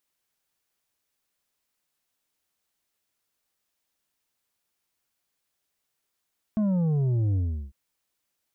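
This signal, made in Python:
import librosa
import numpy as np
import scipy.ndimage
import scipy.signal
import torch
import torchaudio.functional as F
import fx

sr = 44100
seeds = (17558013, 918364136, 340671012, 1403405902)

y = fx.sub_drop(sr, level_db=-22, start_hz=220.0, length_s=1.15, drive_db=6.5, fade_s=0.37, end_hz=65.0)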